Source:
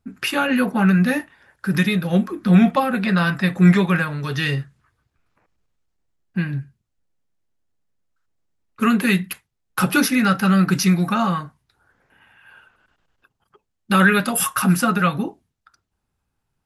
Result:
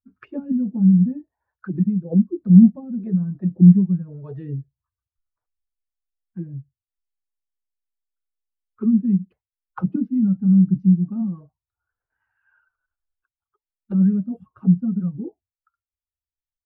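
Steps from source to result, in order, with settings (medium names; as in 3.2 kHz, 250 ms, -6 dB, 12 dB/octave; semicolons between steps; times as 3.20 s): expander on every frequency bin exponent 1.5; touch-sensitive low-pass 210–1400 Hz down, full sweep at -19.5 dBFS; trim -5 dB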